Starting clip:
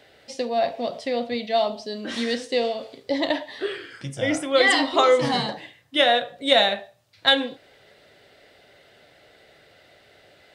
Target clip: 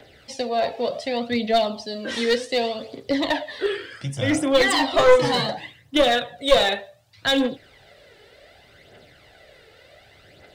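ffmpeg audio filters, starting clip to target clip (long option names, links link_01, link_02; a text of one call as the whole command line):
ffmpeg -i in.wav -filter_complex "[0:a]lowshelf=frequency=110:gain=6.5,acrossover=split=320|1000|5300[link_01][link_02][link_03][link_04];[link_03]alimiter=limit=-18dB:level=0:latency=1:release=16[link_05];[link_01][link_02][link_05][link_04]amix=inputs=4:normalize=0,aphaser=in_gain=1:out_gain=1:delay=2.4:decay=0.51:speed=0.67:type=triangular,aeval=exprs='clip(val(0),-1,0.141)':channel_layout=same,volume=1.5dB" out.wav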